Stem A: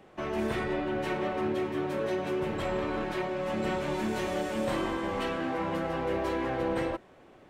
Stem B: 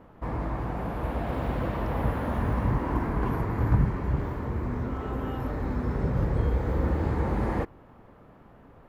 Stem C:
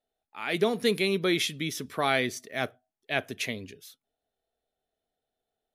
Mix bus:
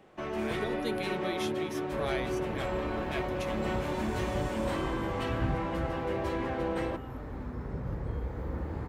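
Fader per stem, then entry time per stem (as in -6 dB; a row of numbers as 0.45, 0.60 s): -2.5, -9.5, -11.5 dB; 0.00, 1.70, 0.00 s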